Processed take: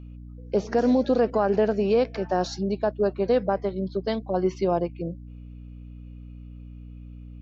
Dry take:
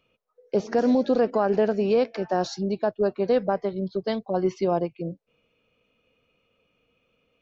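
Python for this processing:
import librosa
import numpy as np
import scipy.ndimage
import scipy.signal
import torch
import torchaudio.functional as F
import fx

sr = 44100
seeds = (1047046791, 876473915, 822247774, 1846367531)

y = fx.add_hum(x, sr, base_hz=60, snr_db=15)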